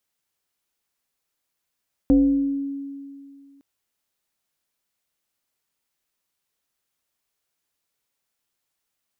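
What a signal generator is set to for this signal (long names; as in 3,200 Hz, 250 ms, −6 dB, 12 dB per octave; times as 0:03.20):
two-operator FM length 1.51 s, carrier 278 Hz, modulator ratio 0.84, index 0.55, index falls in 1.11 s exponential, decay 2.30 s, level −11 dB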